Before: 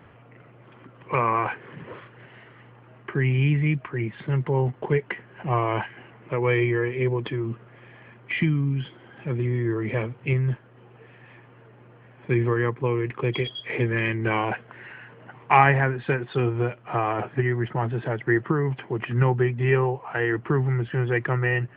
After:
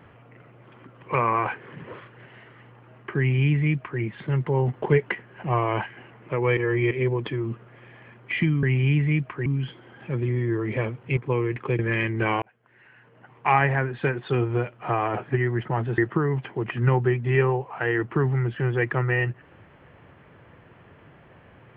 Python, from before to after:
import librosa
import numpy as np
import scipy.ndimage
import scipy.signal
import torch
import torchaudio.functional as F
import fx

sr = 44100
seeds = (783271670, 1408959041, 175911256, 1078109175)

y = fx.edit(x, sr, fx.duplicate(start_s=3.18, length_s=0.83, to_s=8.63),
    fx.clip_gain(start_s=4.68, length_s=0.47, db=3.0),
    fx.reverse_span(start_s=6.57, length_s=0.34),
    fx.cut(start_s=10.34, length_s=2.37),
    fx.cut(start_s=13.33, length_s=0.51),
    fx.fade_in_span(start_s=14.47, length_s=1.7),
    fx.cut(start_s=18.03, length_s=0.29), tone=tone)